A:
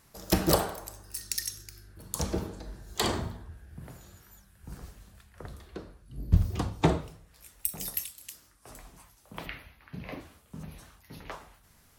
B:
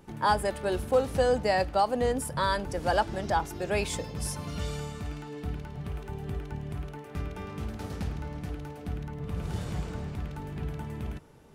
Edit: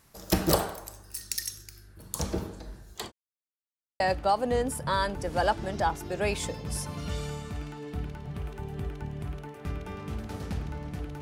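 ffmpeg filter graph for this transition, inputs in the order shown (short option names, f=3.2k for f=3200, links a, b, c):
-filter_complex "[0:a]apad=whole_dur=11.21,atrim=end=11.21,asplit=2[a][b];[a]atrim=end=3.12,asetpts=PTS-STARTPTS,afade=t=out:st=2.66:d=0.46:c=qsin[c];[b]atrim=start=3.12:end=4,asetpts=PTS-STARTPTS,volume=0[d];[1:a]atrim=start=1.5:end=8.71,asetpts=PTS-STARTPTS,afade=t=in:d=0.004:c=hsin[e];[c][d][e]concat=n=3:v=0:a=1"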